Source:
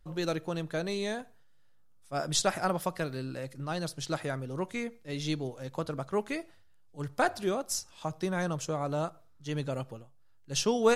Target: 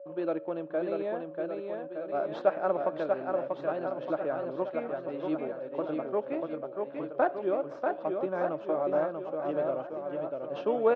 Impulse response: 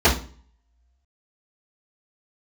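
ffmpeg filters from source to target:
-filter_complex "[0:a]asplit=2[link_01][link_02];[link_02]acrusher=samples=16:mix=1:aa=0.000001,volume=-12dB[link_03];[link_01][link_03]amix=inputs=2:normalize=0,aeval=exprs='val(0)+0.00501*sin(2*PI*560*n/s)':channel_layout=same,highpass=320,equalizer=frequency=320:width_type=q:width=4:gain=7,equalizer=frequency=590:width_type=q:width=4:gain=9,equalizer=frequency=2000:width_type=q:width=4:gain=-10,lowpass=frequency=2300:width=0.5412,lowpass=frequency=2300:width=1.3066,aecho=1:1:640|1216|1734|2201|2621:0.631|0.398|0.251|0.158|0.1,volume=-3.5dB"

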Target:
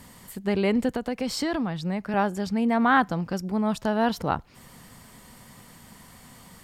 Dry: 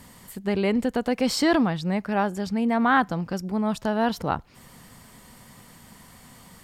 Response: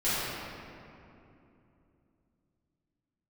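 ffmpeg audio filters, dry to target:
-filter_complex "[0:a]asettb=1/sr,asplit=3[link_01][link_02][link_03];[link_01]atrim=end=0.894[link_04];[link_02]atrim=start=0.89:end=2.14,asetpts=PTS-STARTPTS,afade=type=in:duration=0.004:curve=qsin,afade=type=out:start_time=1.246:duration=0.004:curve=qsin,acrossover=split=130[link_05][link_06];[link_06]acompressor=threshold=-28dB:ratio=2.5[link_07];[link_05][link_07]amix=inputs=2:normalize=0[link_08];[link_03]atrim=start=2.136[link_09];[link_04][link_08]acrossfade=duration=0.004:curve1=hsin:curve2=qsin[link_10];[link_10][link_09]acrossfade=duration=0.004:curve1=qsin:curve2=hsin"

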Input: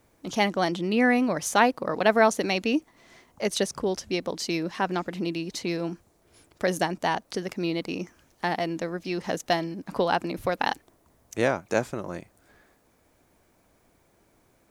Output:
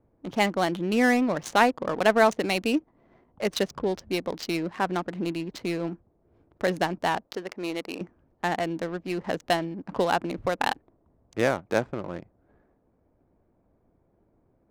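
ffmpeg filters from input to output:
ffmpeg -i in.wav -filter_complex "[0:a]asettb=1/sr,asplit=3[link_01][link_02][link_03];[link_01]atrim=end=7.274[link_04];[link_02]atrim=start=7.27:end=8.01,asetpts=PTS-STARTPTS,afade=type=in:duration=0.004:curve=qsin,afade=type=out:start_time=0.736:duration=0.004:curve=qsin,bass=frequency=250:gain=-14,treble=frequency=4000:gain=1[link_05];[link_03]atrim=start=8.006[link_06];[link_04][link_05]acrossfade=duration=0.004:curve1=hsin:curve2=qsin[link_07];[link_07][link_06]acrossfade=duration=0.004:curve1=qsin:curve2=hsin,adynamicsmooth=sensitivity=6.5:basefreq=700" out.wav

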